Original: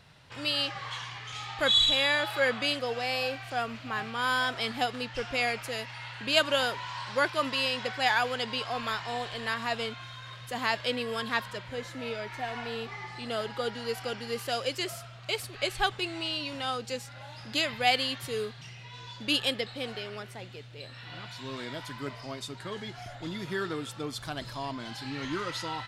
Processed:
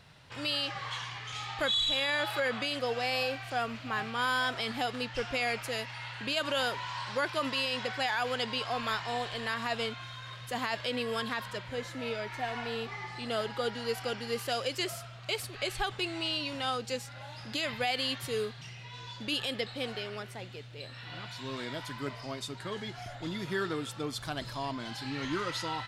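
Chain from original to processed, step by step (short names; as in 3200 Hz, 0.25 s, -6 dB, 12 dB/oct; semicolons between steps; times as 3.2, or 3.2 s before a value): limiter -21 dBFS, peak gain reduction 9 dB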